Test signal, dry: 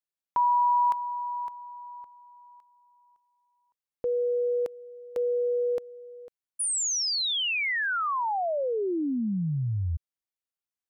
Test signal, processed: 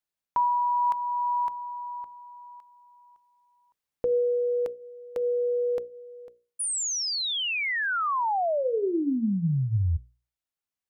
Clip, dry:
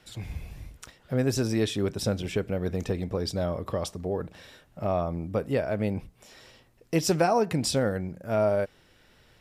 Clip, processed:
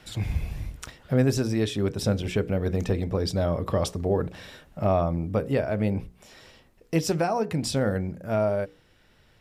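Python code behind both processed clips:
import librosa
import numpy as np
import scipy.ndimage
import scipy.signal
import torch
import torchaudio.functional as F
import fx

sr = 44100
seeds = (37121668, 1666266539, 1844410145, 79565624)

y = fx.bass_treble(x, sr, bass_db=3, treble_db=-2)
y = fx.rider(y, sr, range_db=5, speed_s=0.5)
y = fx.hum_notches(y, sr, base_hz=60, count=9)
y = y * librosa.db_to_amplitude(1.5)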